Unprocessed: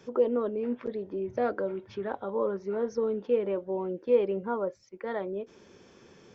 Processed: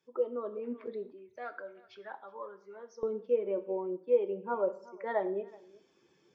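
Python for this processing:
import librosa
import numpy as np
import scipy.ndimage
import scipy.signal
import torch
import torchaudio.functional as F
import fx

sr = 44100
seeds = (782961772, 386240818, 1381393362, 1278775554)

y = fx.bin_expand(x, sr, power=1.5)
y = y + 10.0 ** (-24.0 / 20.0) * np.pad(y, (int(373 * sr / 1000.0), 0))[:len(y)]
y = fx.rev_plate(y, sr, seeds[0], rt60_s=0.52, hf_ratio=0.95, predelay_ms=0, drr_db=9.5)
y = fx.rider(y, sr, range_db=5, speed_s=0.5)
y = fx.highpass(y, sr, hz=fx.steps((0.0, 660.0), (1.12, 1500.0), (3.03, 530.0)), slope=12)
y = fx.tilt_eq(y, sr, slope=-4.0)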